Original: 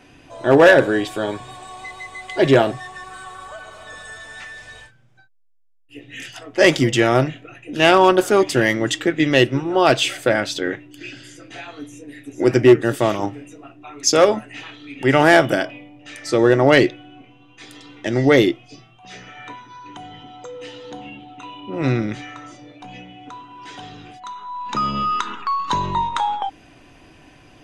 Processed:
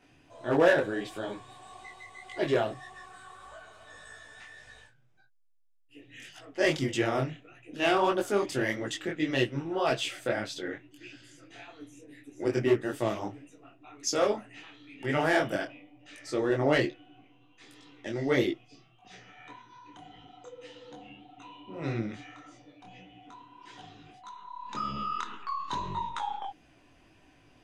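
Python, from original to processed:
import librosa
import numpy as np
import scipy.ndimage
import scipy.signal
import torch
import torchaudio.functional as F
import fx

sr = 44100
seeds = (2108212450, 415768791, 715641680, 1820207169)

y = fx.detune_double(x, sr, cents=59)
y = y * librosa.db_to_amplitude(-9.0)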